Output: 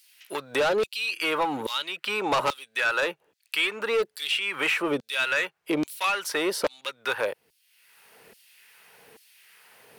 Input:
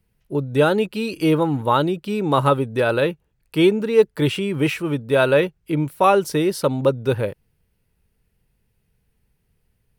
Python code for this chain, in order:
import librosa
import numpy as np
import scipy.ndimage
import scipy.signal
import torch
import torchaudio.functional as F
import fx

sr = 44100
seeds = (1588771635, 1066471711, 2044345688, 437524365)

p1 = fx.high_shelf(x, sr, hz=5100.0, db=-6.0)
p2 = np.clip(10.0 ** (20.5 / 20.0) * p1, -1.0, 1.0) / 10.0 ** (20.5 / 20.0)
p3 = p1 + (p2 * 10.0 ** (-9.0 / 20.0))
p4 = fx.filter_lfo_highpass(p3, sr, shape='saw_down', hz=1.2, low_hz=390.0, high_hz=4900.0, q=1.2)
p5 = 10.0 ** (-18.5 / 20.0) * np.tanh(p4 / 10.0 ** (-18.5 / 20.0))
p6 = fx.band_squash(p5, sr, depth_pct=70)
y = p6 * 10.0 ** (1.5 / 20.0)